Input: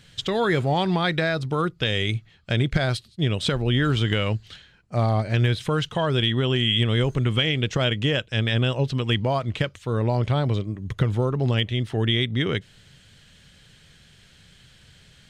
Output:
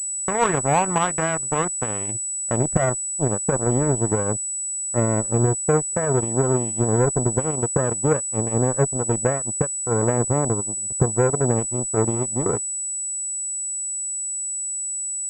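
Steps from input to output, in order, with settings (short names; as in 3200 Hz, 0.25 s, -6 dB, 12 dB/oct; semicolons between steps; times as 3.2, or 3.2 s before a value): low-pass sweep 1100 Hz -> 490 Hz, 0.89–4.18; added harmonics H 3 -16 dB, 7 -23 dB, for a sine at -7.5 dBFS; pulse-width modulation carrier 7900 Hz; gain +3.5 dB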